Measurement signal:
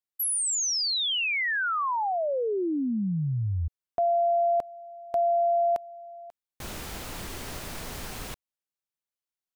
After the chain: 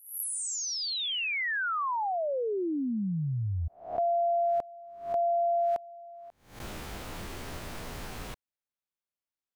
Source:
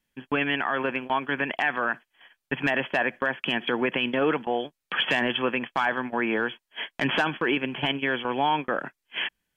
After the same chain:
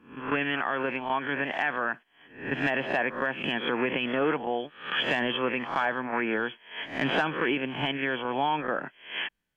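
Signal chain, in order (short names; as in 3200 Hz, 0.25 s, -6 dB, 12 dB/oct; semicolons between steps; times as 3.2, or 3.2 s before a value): spectral swells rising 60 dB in 0.47 s; high shelf 3800 Hz -7 dB; gain -3 dB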